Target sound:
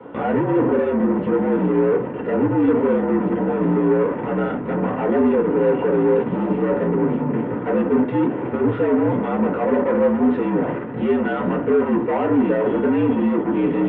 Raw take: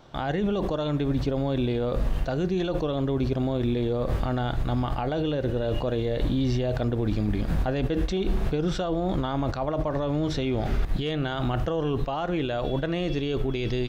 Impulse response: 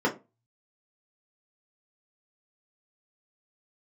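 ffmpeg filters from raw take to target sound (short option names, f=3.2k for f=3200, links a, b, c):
-filter_complex "[0:a]asoftclip=type=hard:threshold=-32dB,highpass=f=170:t=q:w=0.5412,highpass=f=170:t=q:w=1.307,lowpass=f=2.8k:t=q:w=0.5176,lowpass=f=2.8k:t=q:w=0.7071,lowpass=f=2.8k:t=q:w=1.932,afreqshift=-63[a];[1:a]atrim=start_sample=2205[b];[a][b]afir=irnorm=-1:irlink=0,acontrast=53,volume=-6dB"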